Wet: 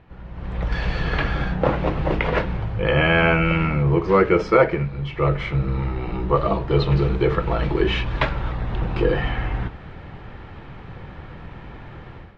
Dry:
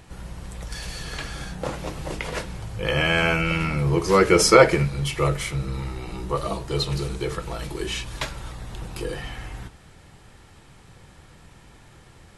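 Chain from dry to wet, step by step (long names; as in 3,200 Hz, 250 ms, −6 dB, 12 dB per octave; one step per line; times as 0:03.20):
Bessel low-pass filter 2,100 Hz, order 4
automatic gain control gain up to 15 dB
level −3 dB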